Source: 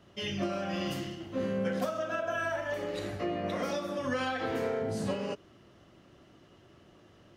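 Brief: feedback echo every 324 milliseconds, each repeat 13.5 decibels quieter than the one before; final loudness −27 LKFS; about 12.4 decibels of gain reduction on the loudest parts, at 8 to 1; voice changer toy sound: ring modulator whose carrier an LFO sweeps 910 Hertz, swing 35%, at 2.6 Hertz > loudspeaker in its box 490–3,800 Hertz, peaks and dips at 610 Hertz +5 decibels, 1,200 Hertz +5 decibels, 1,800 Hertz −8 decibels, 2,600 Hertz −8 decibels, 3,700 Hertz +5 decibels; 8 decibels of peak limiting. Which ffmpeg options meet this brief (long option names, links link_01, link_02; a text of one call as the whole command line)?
ffmpeg -i in.wav -af "acompressor=threshold=-41dB:ratio=8,alimiter=level_in=15dB:limit=-24dB:level=0:latency=1,volume=-15dB,aecho=1:1:324|648:0.211|0.0444,aeval=exprs='val(0)*sin(2*PI*910*n/s+910*0.35/2.6*sin(2*PI*2.6*n/s))':channel_layout=same,highpass=490,equalizer=frequency=610:width_type=q:width=4:gain=5,equalizer=frequency=1200:width_type=q:width=4:gain=5,equalizer=frequency=1800:width_type=q:width=4:gain=-8,equalizer=frequency=2600:width_type=q:width=4:gain=-8,equalizer=frequency=3700:width_type=q:width=4:gain=5,lowpass=frequency=3800:width=0.5412,lowpass=frequency=3800:width=1.3066,volume=24dB" out.wav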